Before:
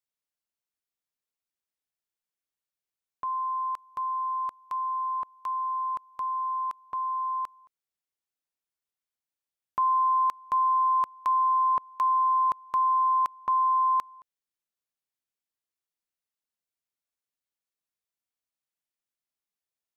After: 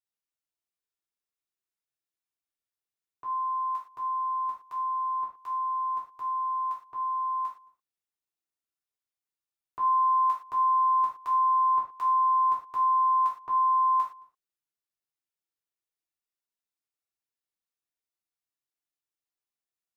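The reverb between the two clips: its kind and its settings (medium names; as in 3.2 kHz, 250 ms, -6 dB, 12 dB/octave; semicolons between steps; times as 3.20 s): gated-style reverb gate 140 ms falling, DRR -6 dB; trim -10.5 dB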